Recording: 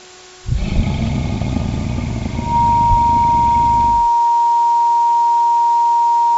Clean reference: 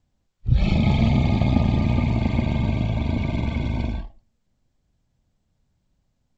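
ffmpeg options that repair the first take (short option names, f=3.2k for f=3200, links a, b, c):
-filter_complex "[0:a]bandreject=f=366.7:t=h:w=4,bandreject=f=733.4:t=h:w=4,bandreject=f=1.1001k:t=h:w=4,bandreject=f=1.4668k:t=h:w=4,bandreject=f=940:w=30,asplit=3[a][b][c];[a]afade=t=out:st=0.75:d=0.02[d];[b]highpass=f=140:w=0.5412,highpass=f=140:w=1.3066,afade=t=in:st=0.75:d=0.02,afade=t=out:st=0.87:d=0.02[e];[c]afade=t=in:st=0.87:d=0.02[f];[d][e][f]amix=inputs=3:normalize=0,asplit=3[g][h][i];[g]afade=t=out:st=2.89:d=0.02[j];[h]highpass=f=140:w=0.5412,highpass=f=140:w=1.3066,afade=t=in:st=2.89:d=0.02,afade=t=out:st=3.01:d=0.02[k];[i]afade=t=in:st=3.01:d=0.02[l];[j][k][l]amix=inputs=3:normalize=0,afwtdn=0.014"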